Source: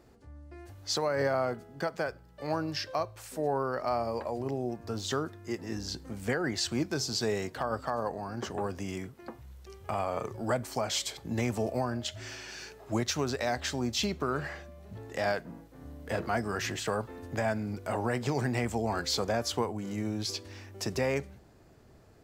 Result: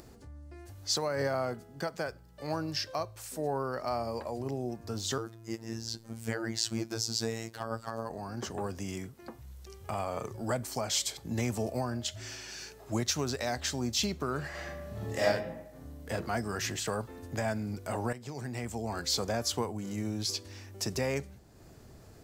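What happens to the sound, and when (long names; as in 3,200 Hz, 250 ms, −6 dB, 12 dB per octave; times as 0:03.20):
0:05.18–0:08.10: phases set to zero 113 Hz
0:14.50–0:15.23: thrown reverb, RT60 0.94 s, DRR −6.5 dB
0:18.13–0:19.26: fade in, from −13.5 dB
whole clip: upward compression, threshold −44 dBFS; bass and treble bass +3 dB, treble +7 dB; level −3 dB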